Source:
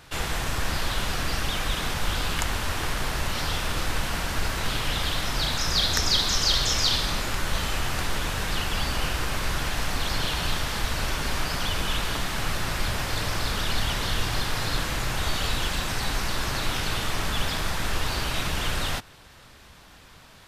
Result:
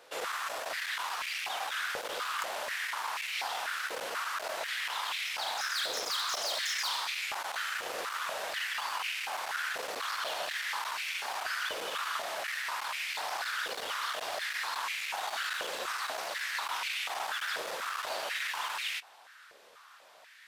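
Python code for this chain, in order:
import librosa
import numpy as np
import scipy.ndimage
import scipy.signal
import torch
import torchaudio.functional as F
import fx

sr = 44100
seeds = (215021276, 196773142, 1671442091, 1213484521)

y = np.clip(10.0 ** (22.5 / 20.0) * x, -1.0, 1.0) / 10.0 ** (22.5 / 20.0)
y = fx.filter_held_highpass(y, sr, hz=4.1, low_hz=500.0, high_hz=2300.0)
y = y * 10.0 ** (-8.0 / 20.0)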